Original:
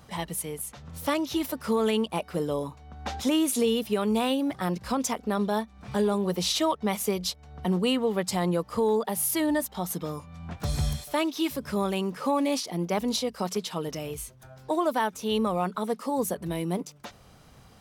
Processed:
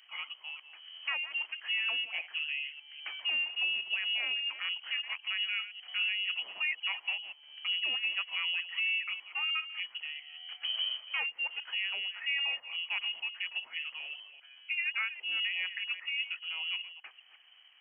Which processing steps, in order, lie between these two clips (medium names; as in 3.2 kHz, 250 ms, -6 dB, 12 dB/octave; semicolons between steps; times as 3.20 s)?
chunks repeated in reverse 200 ms, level -12 dB; frequency inversion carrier 3.1 kHz; Chebyshev high-pass 850 Hz, order 2; trim -7 dB